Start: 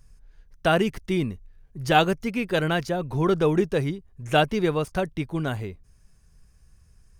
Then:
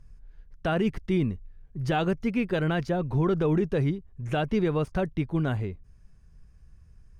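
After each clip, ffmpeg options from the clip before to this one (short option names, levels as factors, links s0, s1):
-af "lowpass=f=1500:p=1,equalizer=f=690:t=o:w=2.6:g=-4,alimiter=limit=0.112:level=0:latency=1:release=52,volume=1.41"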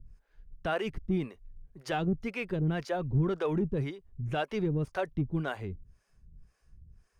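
-filter_complex "[0:a]acrossover=split=400[s0][s1];[s0]aeval=exprs='val(0)*(1-1/2+1/2*cos(2*PI*1.9*n/s))':c=same[s2];[s1]aeval=exprs='val(0)*(1-1/2-1/2*cos(2*PI*1.9*n/s))':c=same[s3];[s2][s3]amix=inputs=2:normalize=0,asplit=2[s4][s5];[s5]asoftclip=type=tanh:threshold=0.0316,volume=0.316[s6];[s4][s6]amix=inputs=2:normalize=0,volume=0.841"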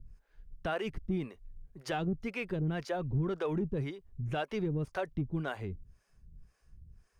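-af "acompressor=threshold=0.0178:ratio=1.5"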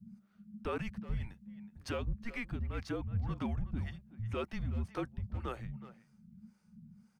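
-filter_complex "[0:a]afreqshift=-230,bandreject=f=66.39:t=h:w=4,bandreject=f=132.78:t=h:w=4,bandreject=f=199.17:t=h:w=4,asplit=2[s0][s1];[s1]adelay=370,highpass=300,lowpass=3400,asoftclip=type=hard:threshold=0.0251,volume=0.2[s2];[s0][s2]amix=inputs=2:normalize=0,volume=0.75"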